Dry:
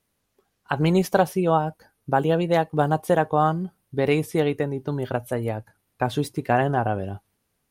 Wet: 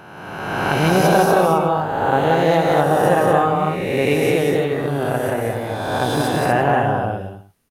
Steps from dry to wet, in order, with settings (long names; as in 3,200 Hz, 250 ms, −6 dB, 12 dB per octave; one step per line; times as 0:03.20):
peak hold with a rise ahead of every peak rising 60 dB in 1.70 s
multi-tap delay 178/242/341 ms −3.5/−5/−17 dB